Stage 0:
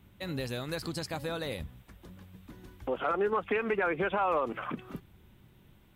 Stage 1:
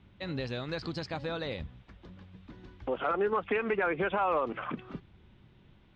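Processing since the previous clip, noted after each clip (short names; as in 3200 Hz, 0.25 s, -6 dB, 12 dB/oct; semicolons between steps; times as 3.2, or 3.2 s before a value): LPF 4900 Hz 24 dB/oct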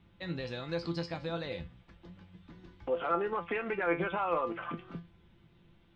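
resonator 170 Hz, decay 0.24 s, harmonics all, mix 80%; gain +6 dB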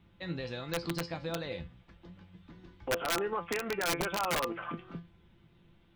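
wrapped overs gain 24 dB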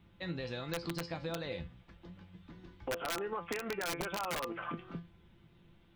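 compressor, threshold -34 dBFS, peak gain reduction 7 dB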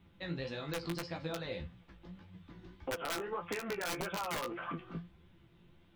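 flange 1.7 Hz, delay 9.8 ms, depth 9.3 ms, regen +18%; gain +3 dB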